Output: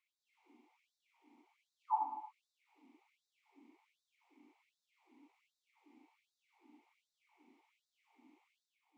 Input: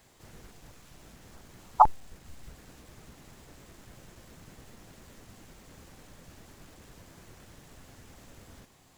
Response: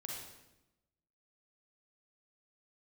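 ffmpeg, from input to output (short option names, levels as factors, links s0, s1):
-filter_complex "[0:a]asplit=3[s0][s1][s2];[s0]bandpass=f=300:t=q:w=8,volume=1[s3];[s1]bandpass=f=870:t=q:w=8,volume=0.501[s4];[s2]bandpass=f=2240:t=q:w=8,volume=0.355[s5];[s3][s4][s5]amix=inputs=3:normalize=0,aeval=exprs='val(0)+0.00141*(sin(2*PI*60*n/s)+sin(2*PI*2*60*n/s)/2+sin(2*PI*3*60*n/s)/3+sin(2*PI*4*60*n/s)/4+sin(2*PI*5*60*n/s)/5)':c=same[s6];[1:a]atrim=start_sample=2205[s7];[s6][s7]afir=irnorm=-1:irlink=0,afftfilt=real='re*gte(b*sr/1024,200*pow(3600/200,0.5+0.5*sin(2*PI*1.3*pts/sr)))':imag='im*gte(b*sr/1024,200*pow(3600/200,0.5+0.5*sin(2*PI*1.3*pts/sr)))':win_size=1024:overlap=0.75,volume=1.19"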